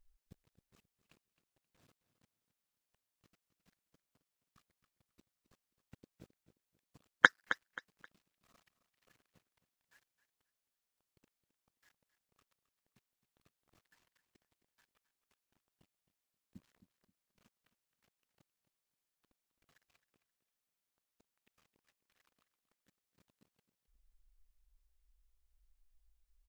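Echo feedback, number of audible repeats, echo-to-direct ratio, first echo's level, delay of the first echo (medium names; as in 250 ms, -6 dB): 27%, 2, -12.5 dB, -13.0 dB, 265 ms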